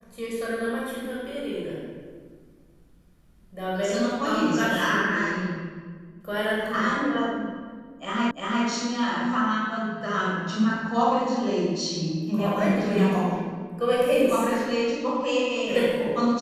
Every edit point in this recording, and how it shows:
0:08.31: the same again, the last 0.35 s

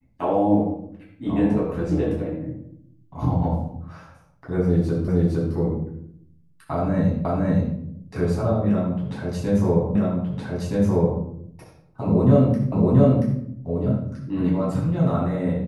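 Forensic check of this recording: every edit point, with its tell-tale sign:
0:05.08: the same again, the last 0.46 s
0:07.25: the same again, the last 0.51 s
0:09.95: the same again, the last 1.27 s
0:12.72: the same again, the last 0.68 s

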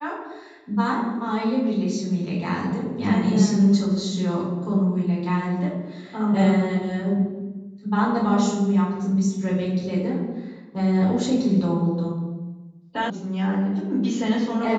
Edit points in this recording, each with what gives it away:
0:13.10: cut off before it has died away

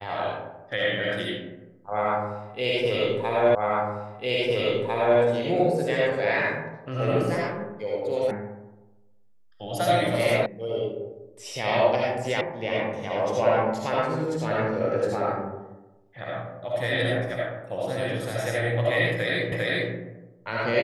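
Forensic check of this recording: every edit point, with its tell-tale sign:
0:03.55: the same again, the last 1.65 s
0:08.31: cut off before it has died away
0:10.46: cut off before it has died away
0:12.41: cut off before it has died away
0:19.52: the same again, the last 0.4 s

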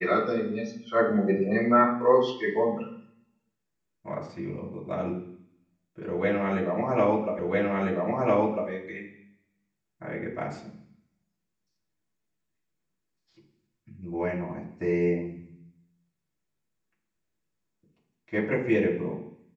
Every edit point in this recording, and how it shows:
0:07.39: the same again, the last 1.3 s

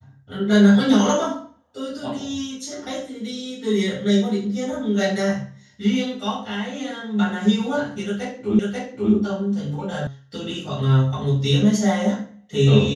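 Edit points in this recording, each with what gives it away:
0:08.59: the same again, the last 0.54 s
0:10.07: cut off before it has died away

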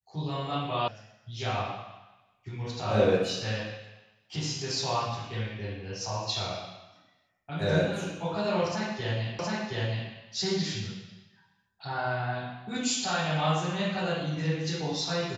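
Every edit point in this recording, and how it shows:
0:00.88: cut off before it has died away
0:09.39: the same again, the last 0.72 s

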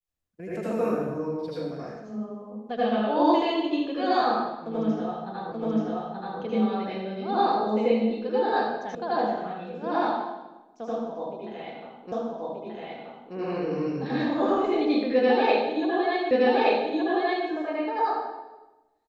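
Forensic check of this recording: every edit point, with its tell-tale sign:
0:05.52: the same again, the last 0.88 s
0:08.95: cut off before it has died away
0:12.12: the same again, the last 1.23 s
0:16.31: the same again, the last 1.17 s

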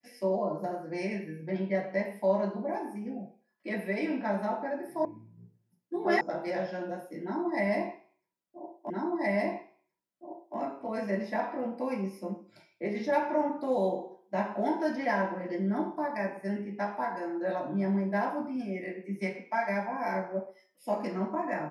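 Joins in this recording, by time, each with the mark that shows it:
0:05.05: cut off before it has died away
0:06.21: cut off before it has died away
0:08.90: the same again, the last 1.67 s

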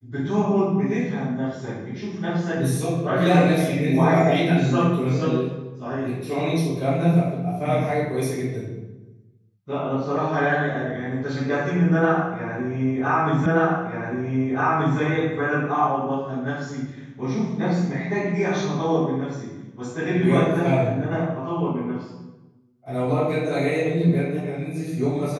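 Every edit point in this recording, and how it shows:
0:13.46: the same again, the last 1.53 s

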